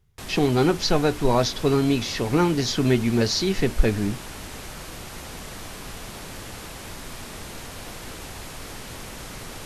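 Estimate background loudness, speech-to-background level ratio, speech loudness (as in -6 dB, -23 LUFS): -37.0 LUFS, 14.5 dB, -22.5 LUFS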